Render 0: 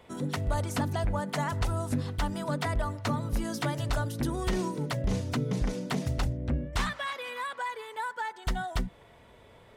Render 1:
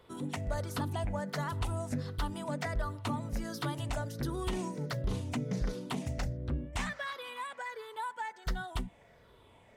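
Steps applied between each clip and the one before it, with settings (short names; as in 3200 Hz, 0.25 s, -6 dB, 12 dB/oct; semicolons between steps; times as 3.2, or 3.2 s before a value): moving spectral ripple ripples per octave 0.6, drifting -1.4 Hz, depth 7 dB; gain -5.5 dB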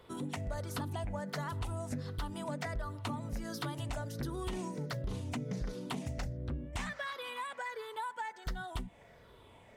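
compressor 2.5:1, threshold -39 dBFS, peak gain reduction 8 dB; gain +2 dB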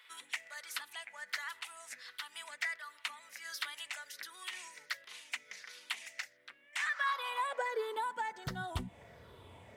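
low shelf 140 Hz -4 dB; high-pass sweep 2000 Hz -> 79 Hz, 6.7–8.77; gain +2 dB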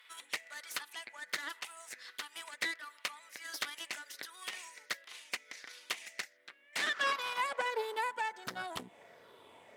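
added harmonics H 2 -7 dB, 6 -17 dB, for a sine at -21.5 dBFS; HPF 320 Hz 12 dB/oct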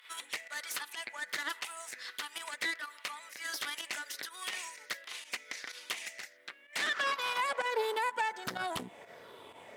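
limiter -29 dBFS, peak gain reduction 11 dB; pump 126 bpm, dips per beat 1, -11 dB, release 83 ms; gain +6.5 dB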